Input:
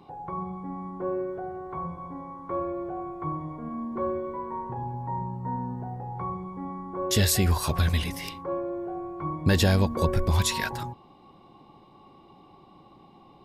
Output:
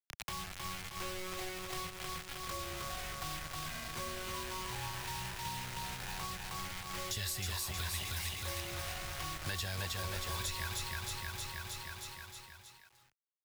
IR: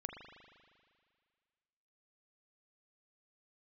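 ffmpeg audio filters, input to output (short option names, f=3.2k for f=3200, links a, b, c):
-filter_complex "[0:a]lowshelf=f=400:g=-10.5,acrusher=bits=5:mix=0:aa=0.000001,asplit=2[a][b];[b]alimiter=limit=-20.5dB:level=0:latency=1,volume=1dB[c];[a][c]amix=inputs=2:normalize=0,equalizer=f=250:t=o:w=1:g=-10,equalizer=f=500:t=o:w=1:g=-7,equalizer=f=1k:t=o:w=1:g=-5,asplit=2[d][e];[e]aecho=0:1:314|628|942|1256|1570|1884|2198:0.708|0.375|0.199|0.105|0.0559|0.0296|0.0157[f];[d][f]amix=inputs=2:normalize=0,acrossover=split=110|290[g][h][i];[g]acompressor=threshold=-47dB:ratio=4[j];[h]acompressor=threshold=-59dB:ratio=4[k];[i]acompressor=threshold=-43dB:ratio=4[l];[j][k][l]amix=inputs=3:normalize=0,volume=2dB"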